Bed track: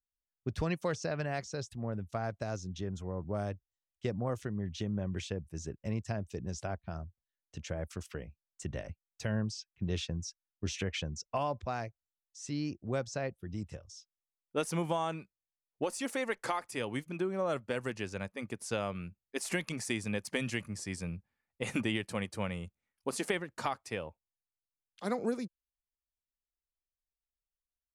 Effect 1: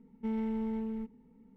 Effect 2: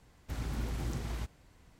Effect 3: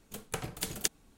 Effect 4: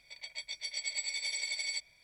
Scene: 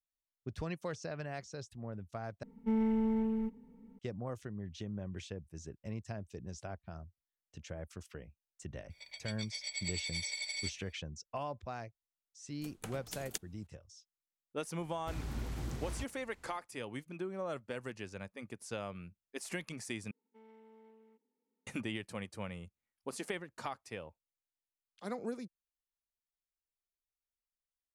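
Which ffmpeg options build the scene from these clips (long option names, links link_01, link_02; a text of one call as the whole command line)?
ffmpeg -i bed.wav -i cue0.wav -i cue1.wav -i cue2.wav -i cue3.wav -filter_complex "[1:a]asplit=2[link_01][link_02];[0:a]volume=-6.5dB[link_03];[link_01]aecho=1:1:4.4:0.38[link_04];[link_02]highpass=frequency=320:width=0.5412,highpass=frequency=320:width=1.3066[link_05];[link_03]asplit=3[link_06][link_07][link_08];[link_06]atrim=end=2.434[link_09];[link_04]atrim=end=1.56[link_10];[link_07]atrim=start=3.986:end=20.114[link_11];[link_05]atrim=end=1.56,asetpts=PTS-STARTPTS,volume=-18dB[link_12];[link_08]atrim=start=21.666[link_13];[4:a]atrim=end=2.03,asetpts=PTS-STARTPTS,volume=-3.5dB,afade=type=in:duration=0.004:curve=hsin,afade=type=out:start_time=2.026:duration=0.004:curve=hsin,adelay=392490S[link_14];[3:a]atrim=end=1.17,asetpts=PTS-STARTPTS,volume=-10dB,afade=type=in:duration=0.004:curve=hsin,afade=type=out:start_time=1.166:duration=0.004:curve=hsin,adelay=12500[link_15];[2:a]atrim=end=1.79,asetpts=PTS-STARTPTS,volume=-3.5dB,afade=type=in:duration=0.004:curve=hsin,afade=type=out:start_time=1.786:duration=0.004:curve=hsin,adelay=14780[link_16];[link_09][link_10]acrossfade=duration=0.004:curve1=hsin:curve2=hsin[link_17];[link_17][link_11]acrossfade=duration=0.004:curve1=hsin:curve2=hsin[link_18];[link_18][link_12]acrossfade=duration=0.004:curve1=hsin:curve2=hsin[link_19];[link_19][link_13]acrossfade=duration=0.004:curve1=hsin:curve2=hsin[link_20];[link_20][link_14][link_15][link_16]amix=inputs=4:normalize=0" out.wav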